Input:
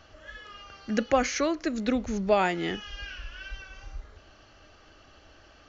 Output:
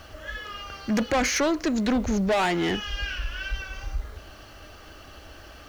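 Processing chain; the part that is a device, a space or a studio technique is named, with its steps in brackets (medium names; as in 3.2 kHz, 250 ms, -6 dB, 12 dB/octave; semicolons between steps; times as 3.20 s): open-reel tape (saturation -28 dBFS, distortion -6 dB; peaking EQ 60 Hz +4.5 dB 0.81 oct; white noise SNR 35 dB); trim +8.5 dB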